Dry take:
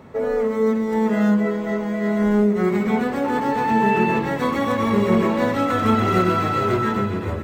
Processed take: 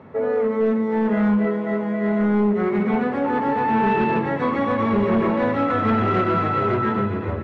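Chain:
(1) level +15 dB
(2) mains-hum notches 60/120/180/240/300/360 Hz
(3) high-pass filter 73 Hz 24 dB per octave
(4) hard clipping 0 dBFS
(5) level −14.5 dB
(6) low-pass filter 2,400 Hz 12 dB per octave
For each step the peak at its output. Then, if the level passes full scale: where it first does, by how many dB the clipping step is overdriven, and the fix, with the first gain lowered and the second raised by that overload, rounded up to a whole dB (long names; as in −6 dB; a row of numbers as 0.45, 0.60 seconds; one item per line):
+8.5, +8.0, +9.0, 0.0, −14.5, −14.0 dBFS
step 1, 9.0 dB
step 1 +6 dB, step 5 −5.5 dB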